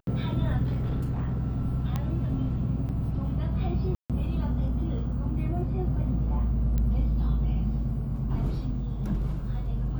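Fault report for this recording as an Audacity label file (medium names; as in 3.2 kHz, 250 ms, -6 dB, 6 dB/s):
0.630000	1.400000	clipped -24.5 dBFS
1.960000	1.960000	pop -17 dBFS
2.890000	2.890000	dropout 4.2 ms
3.950000	4.100000	dropout 147 ms
6.780000	6.780000	pop -18 dBFS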